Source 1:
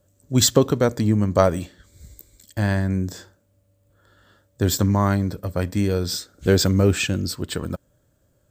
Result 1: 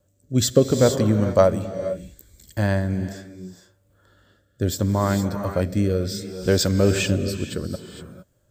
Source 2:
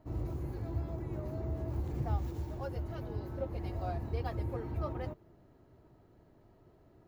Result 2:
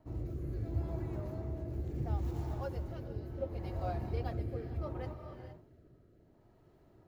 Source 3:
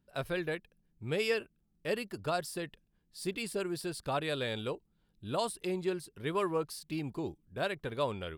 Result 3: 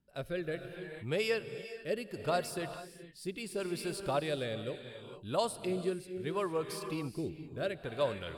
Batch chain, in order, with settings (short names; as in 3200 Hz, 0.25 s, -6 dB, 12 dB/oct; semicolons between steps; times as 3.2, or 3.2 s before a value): non-linear reverb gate 0.49 s rising, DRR 8 dB; dynamic EQ 570 Hz, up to +6 dB, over -39 dBFS, Q 3.8; rotary speaker horn 0.7 Hz